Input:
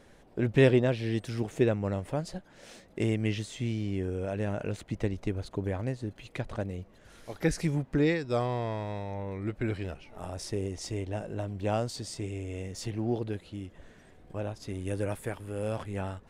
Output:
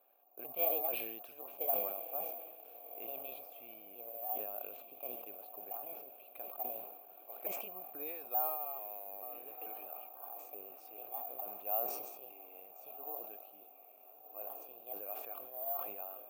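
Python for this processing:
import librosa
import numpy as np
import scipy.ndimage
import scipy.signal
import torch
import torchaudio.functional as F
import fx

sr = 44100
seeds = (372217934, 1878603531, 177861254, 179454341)

y = fx.pitch_trill(x, sr, semitones=4.0, every_ms=439)
y = fx.vowel_filter(y, sr, vowel='a')
y = fx.echo_diffused(y, sr, ms=1354, feedback_pct=46, wet_db=-11.5)
y = (np.kron(y[::3], np.eye(3)[0]) * 3)[:len(y)]
y = scipy.signal.sosfilt(scipy.signal.butter(2, 290.0, 'highpass', fs=sr, output='sos'), y)
y = fx.sustainer(y, sr, db_per_s=47.0)
y = F.gain(torch.from_numpy(y), -4.5).numpy()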